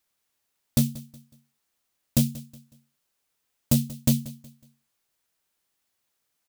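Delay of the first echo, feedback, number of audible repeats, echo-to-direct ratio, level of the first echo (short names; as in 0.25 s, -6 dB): 0.184 s, 35%, 2, -18.0 dB, -18.5 dB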